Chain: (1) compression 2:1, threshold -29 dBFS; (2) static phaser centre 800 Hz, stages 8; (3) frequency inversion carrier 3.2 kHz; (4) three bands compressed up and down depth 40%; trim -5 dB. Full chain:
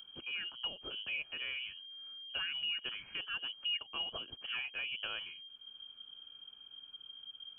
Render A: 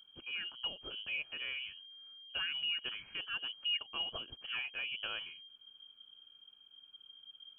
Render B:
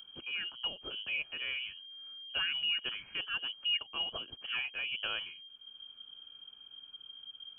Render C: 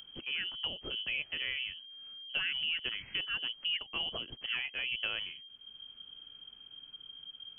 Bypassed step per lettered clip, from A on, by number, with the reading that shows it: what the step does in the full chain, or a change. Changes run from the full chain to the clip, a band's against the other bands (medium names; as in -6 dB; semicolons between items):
4, momentary loudness spread change +6 LU; 1, momentary loudness spread change +3 LU; 2, 1 kHz band -4.0 dB